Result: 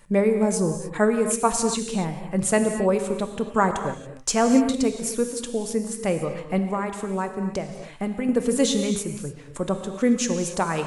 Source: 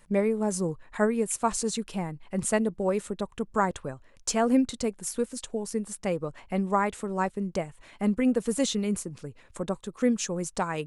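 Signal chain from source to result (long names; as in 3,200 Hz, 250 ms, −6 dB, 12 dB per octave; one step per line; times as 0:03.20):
0:06.58–0:08.29: downward compressor, threshold −28 dBFS, peak gain reduction 9 dB
reverb whose tail is shaped and stops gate 310 ms flat, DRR 6 dB
level +4.5 dB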